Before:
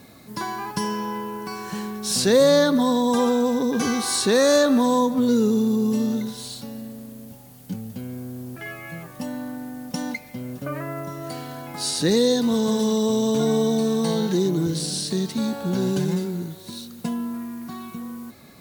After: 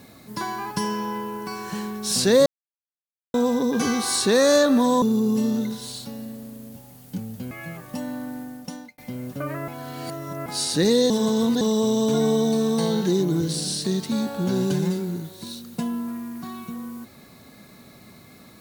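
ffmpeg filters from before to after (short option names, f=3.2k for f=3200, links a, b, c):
-filter_complex "[0:a]asplit=10[a][b][c][d][e][f][g][h][i][j];[a]atrim=end=2.46,asetpts=PTS-STARTPTS,afade=t=out:st=2.456:d=0.004:c=hsin[k];[b]atrim=start=2.46:end=3.34,asetpts=PTS-STARTPTS,volume=0[l];[c]atrim=start=3.34:end=5.022,asetpts=PTS-STARTPTS,afade=t=in:d=0.004:c=hsin[m];[d]atrim=start=5.578:end=8.072[n];[e]atrim=start=8.768:end=10.24,asetpts=PTS-STARTPTS,afade=t=out:st=0.882:d=0.59[o];[f]atrim=start=10.24:end=10.942,asetpts=PTS-STARTPTS,afade=t=in:d=0.004:c=hsin[p];[g]atrim=start=10.938:end=11.722,asetpts=PTS-STARTPTS,areverse[q];[h]atrim=start=11.718:end=12.362[r];[i]atrim=start=12.358:end=12.872,asetpts=PTS-STARTPTS,areverse[s];[j]atrim=start=12.868[t];[k][l][m]concat=n=3:v=0:a=1[u];[u][n]acrossfade=d=0.004:c1=hsin:c2=hsin[v];[o][p]concat=n=2:v=0:a=1[w];[v][w]acrossfade=d=0.004:c1=hsin:c2=hsin[x];[x][q]acrossfade=d=0.004:c1=hsin:c2=hsin[y];[y][r]acrossfade=d=0.004:c1=hsin:c2=hsin[z];[z][s]acrossfade=d=0.004:c1=hsin:c2=hsin[aa];[aa][t]acrossfade=d=0.004:c1=hsin:c2=hsin"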